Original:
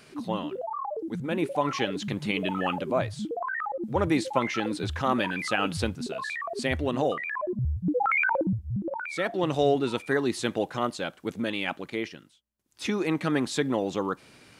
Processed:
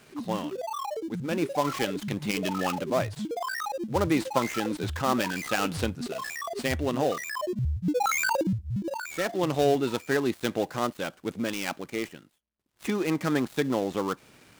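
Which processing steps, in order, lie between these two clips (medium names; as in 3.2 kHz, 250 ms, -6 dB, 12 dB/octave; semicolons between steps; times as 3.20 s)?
dead-time distortion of 0.11 ms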